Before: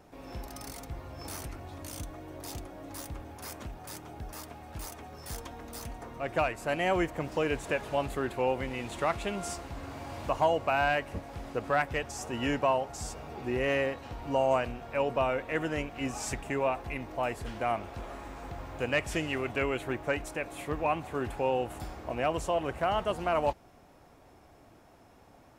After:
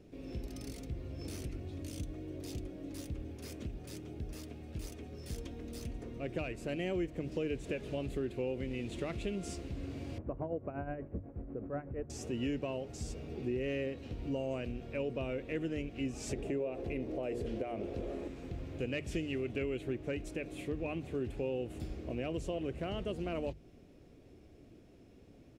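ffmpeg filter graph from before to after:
ffmpeg -i in.wav -filter_complex "[0:a]asettb=1/sr,asplit=3[link_01][link_02][link_03];[link_01]atrim=end=10.184[link_04];[link_02]atrim=start=10.18:end=12.1,asetpts=PTS-STARTPTS,afade=type=in:duration=0.004:curve=qsin,afade=type=out:start_time=1.916:duration=0.004:curve=qsin,lowpass=frequency=1400:width=0.5412,lowpass=frequency=1400:width=1.3066,tremolo=f=8.2:d=0.68[link_05];[link_03]atrim=start=12.096[link_06];[link_04][link_05]acrossfade=duration=0.004:curve1=hsin:curve2=qsin[link_07];[link_07][link_06]acrossfade=duration=0.004:curve1=qsin:curve2=hsin,asettb=1/sr,asplit=3[link_08][link_09][link_10];[link_08]atrim=end=16.294[link_11];[link_09]atrim=start=16.29:end=18.28,asetpts=PTS-STARTPTS,afade=type=in:duration=0.004:curve=qsin,afade=type=out:start_time=1.986:duration=0.004:curve=qsin,equalizer=frequency=500:width_type=o:width=1.6:gain=11,bandreject=frequency=60:width_type=h:width=6,bandreject=frequency=120:width_type=h:width=6,bandreject=frequency=180:width_type=h:width=6,bandreject=frequency=240:width_type=h:width=6,bandreject=frequency=300:width_type=h:width=6,bandreject=frequency=360:width_type=h:width=6,bandreject=frequency=420:width_type=h:width=6,bandreject=frequency=480:width_type=h:width=6,acompressor=threshold=-29dB:ratio=2:attack=3.2:release=140:knee=1:detection=peak[link_12];[link_10]atrim=start=18.276[link_13];[link_11][link_12]acrossfade=duration=0.004:curve1=hsin:curve2=qsin[link_14];[link_14][link_13]acrossfade=duration=0.004:curve1=qsin:curve2=hsin,firequalizer=gain_entry='entry(400,0);entry(850,-21);entry(2500,-6);entry(14000,-16)':delay=0.05:min_phase=1,acompressor=threshold=-37dB:ratio=2.5,bandreject=frequency=50:width_type=h:width=6,bandreject=frequency=100:width_type=h:width=6,bandreject=frequency=150:width_type=h:width=6,volume=2.5dB" out.wav

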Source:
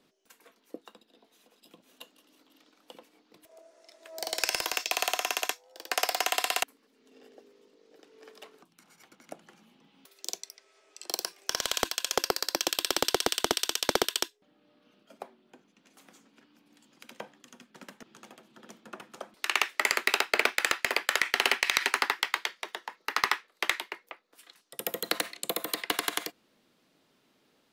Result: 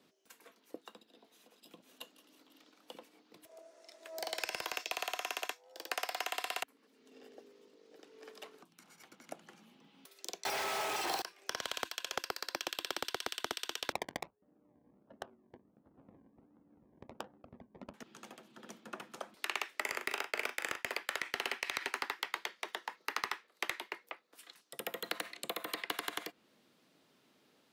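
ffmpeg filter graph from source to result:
ffmpeg -i in.wav -filter_complex "[0:a]asettb=1/sr,asplit=3[link_01][link_02][link_03];[link_01]atrim=end=10.454[link_04];[link_02]atrim=start=10.45:end=11.22,asetpts=PTS-STARTPTS,afade=type=in:duration=0.004:curve=qsin,afade=type=out:start_time=0.766:duration=0.004:curve=qsin,aeval=exprs='val(0)+0.5*0.0668*sgn(val(0))':channel_layout=same,equalizer=frequency=820:width_type=o:width=0.49:gain=12.5[link_05];[link_03]atrim=start=11.216[link_06];[link_04][link_05]acrossfade=duration=0.004:curve1=hsin:curve2=qsin[link_07];[link_07][link_06]acrossfade=duration=0.004:curve1=qsin:curve2=hsin,asettb=1/sr,asplit=3[link_08][link_09][link_10];[link_08]atrim=end=13.924[link_11];[link_09]atrim=start=13.92:end=17.94,asetpts=PTS-STARTPTS,afade=type=in:duration=0.004:curve=qsin,afade=type=out:start_time=4.016:duration=0.004:curve=qsin,acrusher=samples=26:mix=1:aa=0.000001:lfo=1:lforange=15.6:lforate=1.4,adynamicsmooth=sensitivity=7:basefreq=730[link_12];[link_10]atrim=start=17.936[link_13];[link_11][link_12]acrossfade=duration=0.004:curve1=hsin:curve2=qsin[link_14];[link_14][link_13]acrossfade=duration=0.004:curve1=qsin:curve2=hsin,asettb=1/sr,asplit=3[link_15][link_16][link_17];[link_15]atrim=end=19.814[link_18];[link_16]atrim=start=19.81:end=20.88,asetpts=PTS-STARTPTS,afade=type=in:duration=0.004:curve=qsin,afade=type=out:start_time=1.066:duration=0.004:curve=qsin,equalizer=frequency=4100:width_type=o:width=0.21:gain=-8.5,asplit=2[link_19][link_20];[link_20]adelay=39,volume=-9dB[link_21];[link_19][link_21]amix=inputs=2:normalize=0,atrim=end_sample=47187,agate=range=-33dB:threshold=-44dB:ratio=3:release=100:detection=peak[link_22];[link_17]atrim=start=20.876[link_23];[link_18][link_22]acrossfade=duration=0.004:curve1=hsin:curve2=qsin[link_24];[link_24][link_23]acrossfade=duration=0.004:curve1=qsin:curve2=hsin,acrossover=split=830|3400[link_25][link_26][link_27];[link_25]acompressor=threshold=-42dB:ratio=4[link_28];[link_26]acompressor=threshold=-36dB:ratio=4[link_29];[link_27]acompressor=threshold=-44dB:ratio=4[link_30];[link_28][link_29][link_30]amix=inputs=3:normalize=0,highpass=73,volume=-1dB" out.wav

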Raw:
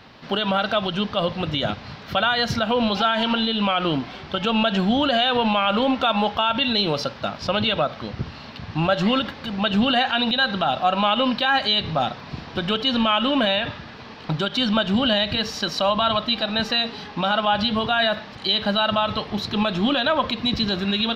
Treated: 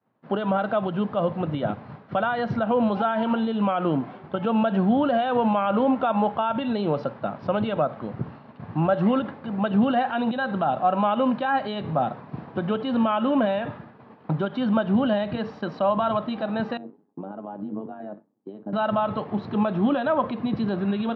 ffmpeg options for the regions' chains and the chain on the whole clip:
ffmpeg -i in.wav -filter_complex "[0:a]asettb=1/sr,asplit=3[link_01][link_02][link_03];[link_01]atrim=end=16.774[link_04];[link_02]atrim=start=16.77:end=18.73,asetpts=PTS-STARTPTS,afade=type=in:duration=0.004:curve=qsin,afade=type=out:start_time=1.956:duration=0.004:curve=qsin,tremolo=f=99:d=0.75,bandpass=frequency=300:width_type=q:width=1.9[link_05];[link_03]atrim=start=18.726[link_06];[link_04][link_05]acrossfade=duration=0.004:curve1=hsin:curve2=qsin[link_07];[link_07][link_06]acrossfade=duration=0.004:curve1=qsin:curve2=hsin,lowpass=1100,agate=range=-33dB:threshold=-35dB:ratio=3:detection=peak,highpass=frequency=110:width=0.5412,highpass=frequency=110:width=1.3066" out.wav

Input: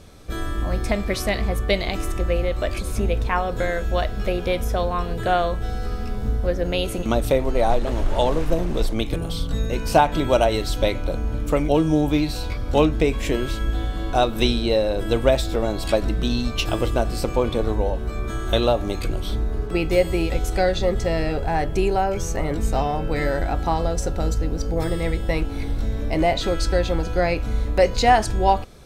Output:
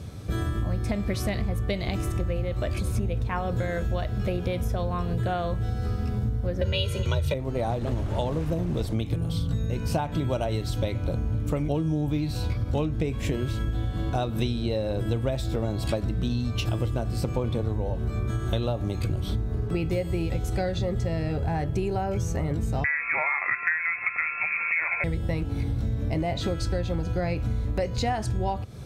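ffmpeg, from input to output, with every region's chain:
ffmpeg -i in.wav -filter_complex "[0:a]asettb=1/sr,asplit=3[link_01][link_02][link_03];[link_01]atrim=end=6.614[link_04];[link_02]atrim=start=6.61:end=7.34,asetpts=PTS-STARTPTS,afade=type=in:duration=0.004:curve=qsin,afade=type=out:start_time=0.726:duration=0.004:curve=qsin,equalizer=frequency=3000:width=0.56:gain=11.5,aecho=1:1:2.1:0.93,atrim=end_sample=32193,afreqshift=29[link_05];[link_03]atrim=start=7.336[link_06];[link_04][link_05]acrossfade=duration=0.004:curve1=hsin:curve2=qsin[link_07];[link_07][link_06]acrossfade=duration=0.004:curve1=qsin:curve2=hsin,asettb=1/sr,asplit=3[link_08][link_09][link_10];[link_08]atrim=end=22.844[link_11];[link_09]atrim=start=22.84:end=25.04,asetpts=PTS-STARTPTS,afade=type=in:duration=0.004:curve=qsin,afade=type=out:start_time=2.196:duration=0.004:curve=qsin,highpass=120,equalizer=frequency=1100:width_type=o:width=3:gain=15,lowpass=frequency=2300:width_type=q:width=0.5098,lowpass=frequency=2300:width_type=q:width=0.6013,lowpass=frequency=2300:width_type=q:width=0.9,lowpass=frequency=2300:width_type=q:width=2.563,afreqshift=-2700[link_12];[link_10]atrim=start=25.036[link_13];[link_11][link_12]acrossfade=duration=0.004:curve1=hsin:curve2=qsin[link_14];[link_14][link_13]acrossfade=duration=0.004:curve1=qsin:curve2=hsin,highpass=57,equalizer=frequency=110:width=0.78:gain=15,acompressor=threshold=-24dB:ratio=6" out.wav

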